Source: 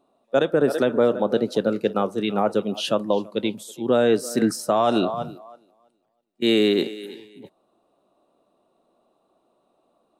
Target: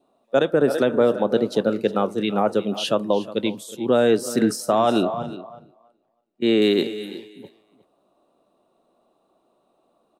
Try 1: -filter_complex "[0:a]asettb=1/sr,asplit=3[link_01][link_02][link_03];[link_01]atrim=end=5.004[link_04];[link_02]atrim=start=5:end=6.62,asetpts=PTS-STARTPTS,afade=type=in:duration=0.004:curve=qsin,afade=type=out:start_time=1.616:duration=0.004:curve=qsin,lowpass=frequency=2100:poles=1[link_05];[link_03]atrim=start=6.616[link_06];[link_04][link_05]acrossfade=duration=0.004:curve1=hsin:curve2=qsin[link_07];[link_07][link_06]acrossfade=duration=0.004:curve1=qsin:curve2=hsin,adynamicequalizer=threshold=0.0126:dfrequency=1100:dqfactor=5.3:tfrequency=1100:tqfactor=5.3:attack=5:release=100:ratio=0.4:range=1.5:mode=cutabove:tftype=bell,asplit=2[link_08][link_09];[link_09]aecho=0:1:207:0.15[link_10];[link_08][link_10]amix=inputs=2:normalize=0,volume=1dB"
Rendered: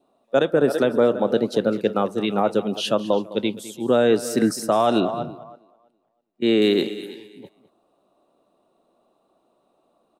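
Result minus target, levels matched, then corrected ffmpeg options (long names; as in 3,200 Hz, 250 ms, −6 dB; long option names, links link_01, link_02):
echo 155 ms early
-filter_complex "[0:a]asettb=1/sr,asplit=3[link_01][link_02][link_03];[link_01]atrim=end=5.004[link_04];[link_02]atrim=start=5:end=6.62,asetpts=PTS-STARTPTS,afade=type=in:duration=0.004:curve=qsin,afade=type=out:start_time=1.616:duration=0.004:curve=qsin,lowpass=frequency=2100:poles=1[link_05];[link_03]atrim=start=6.616[link_06];[link_04][link_05]acrossfade=duration=0.004:curve1=hsin:curve2=qsin[link_07];[link_07][link_06]acrossfade=duration=0.004:curve1=qsin:curve2=hsin,adynamicequalizer=threshold=0.0126:dfrequency=1100:dqfactor=5.3:tfrequency=1100:tqfactor=5.3:attack=5:release=100:ratio=0.4:range=1.5:mode=cutabove:tftype=bell,asplit=2[link_08][link_09];[link_09]aecho=0:1:362:0.15[link_10];[link_08][link_10]amix=inputs=2:normalize=0,volume=1dB"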